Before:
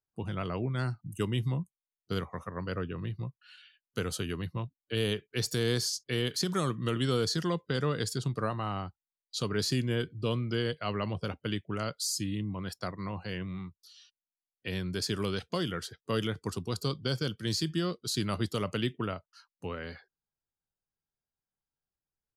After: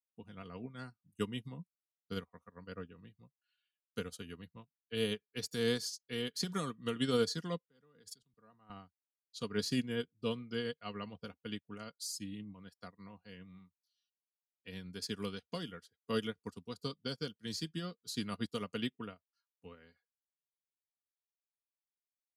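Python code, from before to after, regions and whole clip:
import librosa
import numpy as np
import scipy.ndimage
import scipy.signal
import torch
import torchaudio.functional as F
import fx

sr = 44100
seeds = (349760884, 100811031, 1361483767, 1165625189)

y = fx.chain(x, sr, fx.level_steps(step_db=20),
    fx.band_widen(depth_pct=100), at=(7.66, 8.7))
y = fx.peak_eq(y, sr, hz=740.0, db=-2.5, octaves=1.2)
y = y + 0.52 * np.pad(y, (int(4.2 * sr / 1000.0), 0))[:len(y)]
y = fx.upward_expand(y, sr, threshold_db=-45.0, expansion=2.5)
y = y * 10.0 ** (-1.0 / 20.0)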